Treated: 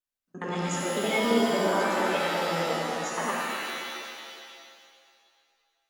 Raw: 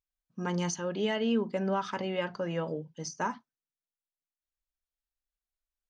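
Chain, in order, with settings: local time reversal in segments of 69 ms; resonant low shelf 180 Hz -9.5 dB, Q 1.5; formant shift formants +2 st; shimmer reverb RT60 2.1 s, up +7 st, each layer -2 dB, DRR -3 dB; gain -1.5 dB

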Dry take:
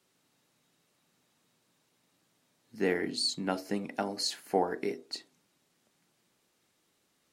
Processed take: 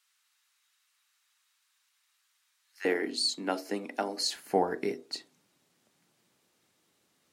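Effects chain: HPF 1200 Hz 24 dB/oct, from 2.85 s 250 Hz, from 4.36 s 63 Hz; gain +1.5 dB

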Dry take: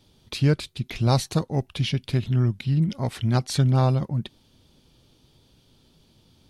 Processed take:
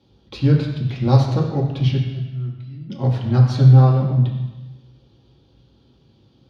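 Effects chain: 2.01–2.9 resonator 670 Hz, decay 0.21 s, harmonics all, mix 90%; reverb RT60 1.1 s, pre-delay 3 ms, DRR -3.5 dB; gain -11.5 dB

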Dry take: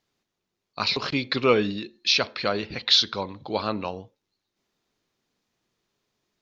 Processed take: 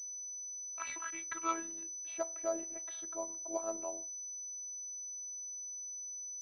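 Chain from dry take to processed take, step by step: band-pass sweep 2200 Hz -> 590 Hz, 0.66–2.31; robotiser 329 Hz; pulse-width modulation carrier 6000 Hz; gain -4 dB

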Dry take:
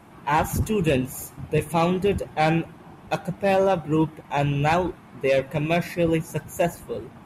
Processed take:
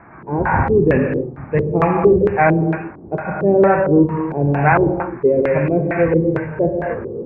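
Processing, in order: elliptic low-pass 2400 Hz, stop band 40 dB; non-linear reverb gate 0.31 s flat, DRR 2 dB; LFO low-pass square 2.2 Hz 400–1700 Hz; gain +4.5 dB

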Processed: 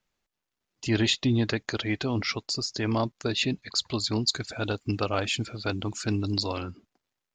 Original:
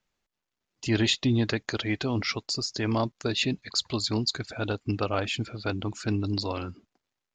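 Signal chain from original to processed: 4.28–6.61 high shelf 5600 Hz +10 dB

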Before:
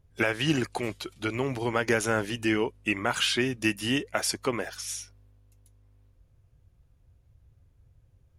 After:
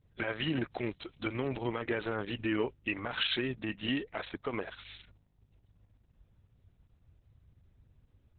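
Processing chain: limiter -17 dBFS, peak gain reduction 7.5 dB; gain -3 dB; Opus 6 kbps 48000 Hz

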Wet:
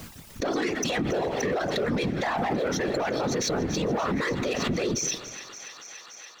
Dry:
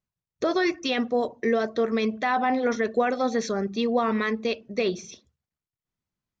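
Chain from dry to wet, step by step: reverb removal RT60 0.62 s; in parallel at -1 dB: negative-ratio compressor -39 dBFS, ratio -1; on the sum: spring tank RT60 3.1 s, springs 43 ms, chirp 75 ms, DRR 19 dB; sample leveller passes 2; whisperiser; on a send: thin delay 0.286 s, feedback 84%, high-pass 1700 Hz, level -17 dB; on the sum: limiter -18 dBFS, peak gain reduction 10.5 dB; backwards sustainer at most 32 dB/s; gain -1.5 dB

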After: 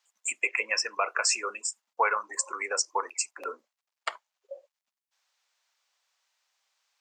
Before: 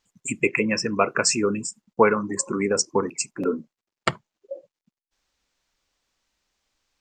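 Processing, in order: HPF 660 Hz 24 dB/oct; limiter -14 dBFS, peak gain reduction 9 dB

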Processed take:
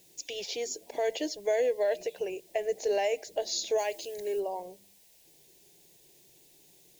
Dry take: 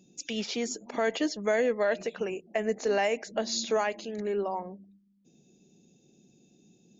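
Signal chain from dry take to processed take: requantised 10-bit, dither triangular; 3.78–4.4 high shelf 4300 Hz +8 dB; fixed phaser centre 530 Hz, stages 4

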